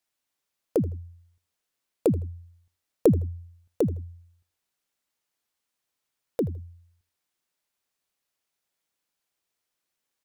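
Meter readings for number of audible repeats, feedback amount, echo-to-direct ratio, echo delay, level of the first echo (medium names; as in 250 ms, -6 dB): 2, 26%, -18.5 dB, 80 ms, -19.0 dB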